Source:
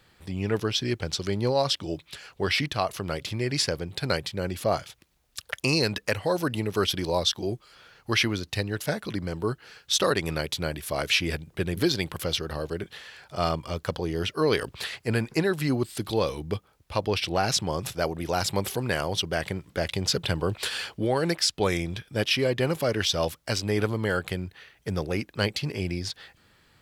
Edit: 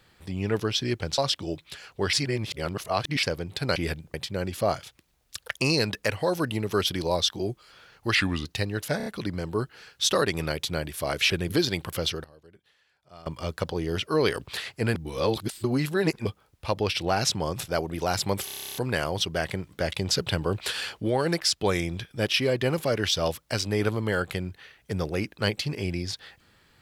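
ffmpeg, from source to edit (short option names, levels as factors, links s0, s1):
-filter_complex "[0:a]asplit=26[s0][s1][s2][s3][s4][s5][s6][s7][s8][s9][s10][s11][s12][s13][s14][s15][s16][s17][s18][s19][s20][s21][s22][s23][s24][s25];[s0]atrim=end=1.182[s26];[s1]atrim=start=1.588:end=2.542[s27];[s2]atrim=start=2.538:end=3.642,asetpts=PTS-STARTPTS,areverse[s28];[s3]atrim=start=3.638:end=4.172[s29];[s4]atrim=start=11.188:end=11.572[s30];[s5]atrim=start=4.168:end=8.184[s31];[s6]atrim=start=8.18:end=8.43,asetpts=PTS-STARTPTS,asetrate=36603,aresample=44100,atrim=end_sample=13283,asetpts=PTS-STARTPTS[s32];[s7]atrim=start=8.426:end=8.982[s33];[s8]atrim=start=8.948:end=8.982[s34];[s9]atrim=start=8.948:end=8.982[s35];[s10]atrim=start=8.948:end=11.192[s36];[s11]atrim=start=11.568:end=12.51,asetpts=PTS-STARTPTS,afade=t=out:st=0.742:d=0.2:c=log:silence=0.0794328[s37];[s12]atrim=start=12.51:end=13.53,asetpts=PTS-STARTPTS,volume=0.0794[s38];[s13]atrim=start=13.53:end=15.222,asetpts=PTS-STARTPTS,afade=t=in:d=0.2:c=log:silence=0.0794328[s39];[s14]atrim=start=15.218:end=16.522,asetpts=PTS-STARTPTS,areverse[s40];[s15]atrim=start=16.518:end=18.752[s41];[s16]atrim=start=18.718:end=18.752[s42];[s17]atrim=start=18.718:end=18.752[s43];[s18]atrim=start=18.718:end=18.752[s44];[s19]atrim=start=18.718:end=18.752[s45];[s20]atrim=start=18.718:end=18.752[s46];[s21]atrim=start=18.718:end=18.752[s47];[s22]atrim=start=18.718:end=18.752[s48];[s23]atrim=start=18.718:end=18.752[s49];[s24]atrim=start=18.718:end=18.752[s50];[s25]atrim=start=18.718[s51];[s26][s27]acrossfade=d=0.004:c1=hsin:c2=hsin[s52];[s52][s28]acrossfade=d=0.004:c1=hsin:c2=hsin[s53];[s53][s29]acrossfade=d=0.004:c1=hsin:c2=hsin[s54];[s54][s30]acrossfade=d=0.004:c1=hsin:c2=hsin[s55];[s55][s31]acrossfade=d=0.004:c1=hsin:c2=hsin[s56];[s56][s32]acrossfade=d=0.004:c1=hsin:c2=hsin[s57];[s57][s33]acrossfade=d=0.004:c1=hsin:c2=hsin[s58];[s58][s34]acrossfade=d=0.004:c1=hsin:c2=hsin[s59];[s59][s35]acrossfade=d=0.004:c1=hsin:c2=hsin[s60];[s60][s36]acrossfade=d=0.004:c1=hsin:c2=hsin[s61];[s37][s38][s39]concat=n=3:v=0:a=1[s62];[s61][s62]acrossfade=d=0.004:c1=hsin:c2=hsin[s63];[s63][s40]acrossfade=d=0.004:c1=hsin:c2=hsin[s64];[s64][s41]acrossfade=d=0.004:c1=hsin:c2=hsin[s65];[s65][s42]acrossfade=d=0.004:c1=hsin:c2=hsin[s66];[s66][s43]acrossfade=d=0.004:c1=hsin:c2=hsin[s67];[s67][s44]acrossfade=d=0.004:c1=hsin:c2=hsin[s68];[s68][s45]acrossfade=d=0.004:c1=hsin:c2=hsin[s69];[s69][s46]acrossfade=d=0.004:c1=hsin:c2=hsin[s70];[s70][s47]acrossfade=d=0.004:c1=hsin:c2=hsin[s71];[s71][s48]acrossfade=d=0.004:c1=hsin:c2=hsin[s72];[s72][s49]acrossfade=d=0.004:c1=hsin:c2=hsin[s73];[s73][s50]acrossfade=d=0.004:c1=hsin:c2=hsin[s74];[s74][s51]acrossfade=d=0.004:c1=hsin:c2=hsin"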